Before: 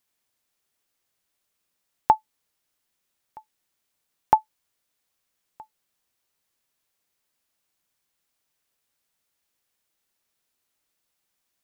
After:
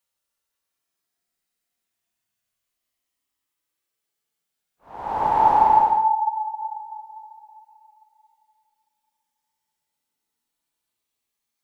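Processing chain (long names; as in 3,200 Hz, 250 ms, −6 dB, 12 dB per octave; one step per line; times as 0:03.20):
extreme stretch with random phases 29×, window 0.05 s, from 0:01.91
level −3.5 dB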